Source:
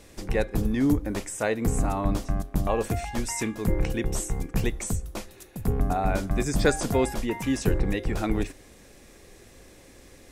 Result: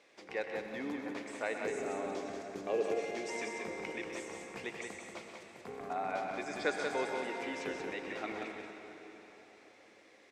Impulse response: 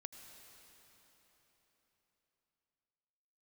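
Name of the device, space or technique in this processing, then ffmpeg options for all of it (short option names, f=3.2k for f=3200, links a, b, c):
station announcement: -filter_complex "[0:a]asettb=1/sr,asplit=3[a][b][c];[a]atrim=end=1.654[d];[b]atrim=start=1.65:end=3.3,asetpts=PTS-STARTPTS,afade=t=in:d=0.004:c=qsin,afade=t=out:st=1.646:d=0.004:c=qsin,equalizer=f=400:t=o:w=0.67:g=12,equalizer=f=1k:t=o:w=0.67:g=-10,equalizer=f=6.3k:t=o:w=0.67:g=6[e];[c]atrim=start=3.296[f];[d][e]acrossfade=d=0.004:c1=hsin:c2=qsin[g];[g][f]acrossfade=d=0.004:c1=qsin:c2=hsin,highpass=470,lowpass=4.3k,equalizer=f=2.2k:t=o:w=0.25:g=5.5,aecho=1:1:125.4|183.7:0.282|0.562[h];[1:a]atrim=start_sample=2205[i];[h][i]afir=irnorm=-1:irlink=0,volume=-3dB"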